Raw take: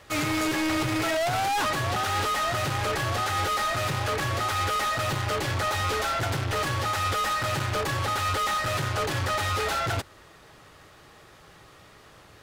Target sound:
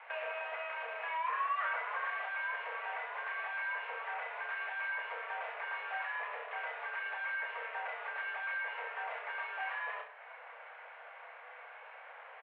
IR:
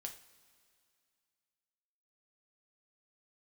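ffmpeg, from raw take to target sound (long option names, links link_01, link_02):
-filter_complex "[0:a]acompressor=threshold=-39dB:ratio=10,asettb=1/sr,asplit=3[link_01][link_02][link_03];[link_01]atrim=end=1.244[link_04];[link_02]atrim=start=1.24:end=2.07,asetpts=PTS-STARTPTS,afade=type=in:duration=0.004:curve=qsin,afade=type=out:start_time=0.826:duration=0.004:curve=qsin,equalizer=frequency=950:width=1.4:gain=5[link_05];[link_03]atrim=start=2.066[link_06];[link_04][link_05]acrossfade=duration=0.004:curve1=hsin:curve2=qsin[link_07];[link_07][link_06]acrossfade=duration=0.004:curve1=qsin:curve2=hsin,highpass=frequency=180:width_type=q:width=0.5412,highpass=frequency=180:width_type=q:width=1.307,lowpass=frequency=2300:width_type=q:width=0.5176,lowpass=frequency=2300:width_type=q:width=0.7071,lowpass=frequency=2300:width_type=q:width=1.932,afreqshift=330,aecho=1:1:30|66|109.2|161|223.2:0.631|0.398|0.251|0.158|0.1"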